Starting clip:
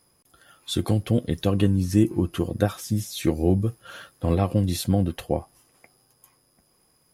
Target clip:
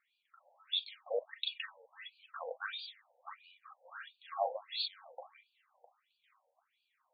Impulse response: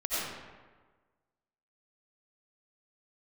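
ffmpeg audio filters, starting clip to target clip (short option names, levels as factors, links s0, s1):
-filter_complex "[0:a]asettb=1/sr,asplit=3[s0][s1][s2];[s0]atrim=end=2.124[s3];[s1]atrim=start=2.12:end=3.42,asetpts=PTS-STARTPTS,afade=t=in:d=0.004:c=qsin,afade=t=out:st=1.296:d=0.004:c=qsin,lowpass=f=5700:t=q:w=4.9[s4];[s2]atrim=start=3.416[s5];[s3][s4]acrossfade=d=0.004:c1=hsin:c2=qsin[s6];[s6][s5]acrossfade=d=0.004:c1=qsin:c2=hsin[s7];[1:a]atrim=start_sample=2205,atrim=end_sample=3528,asetrate=79380,aresample=44100[s8];[s7][s8]afir=irnorm=-1:irlink=0,afftfilt=real='re*between(b*sr/1024,650*pow(3400/650,0.5+0.5*sin(2*PI*1.5*pts/sr))/1.41,650*pow(3400/650,0.5+0.5*sin(2*PI*1.5*pts/sr))*1.41)':imag='im*between(b*sr/1024,650*pow(3400/650,0.5+0.5*sin(2*PI*1.5*pts/sr))/1.41,650*pow(3400/650,0.5+0.5*sin(2*PI*1.5*pts/sr))*1.41)':win_size=1024:overlap=0.75,volume=1.58"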